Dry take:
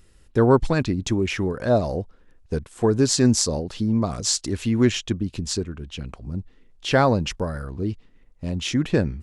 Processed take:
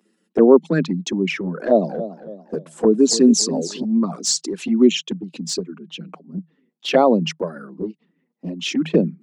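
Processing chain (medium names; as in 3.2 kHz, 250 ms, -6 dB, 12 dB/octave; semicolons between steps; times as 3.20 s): resonances exaggerated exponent 1.5; Chebyshev high-pass 160 Hz, order 10; touch-sensitive flanger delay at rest 9.3 ms, full sweep at -16 dBFS; 1.61–3.85 s: modulated delay 280 ms, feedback 43%, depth 120 cents, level -13.5 dB; trim +6.5 dB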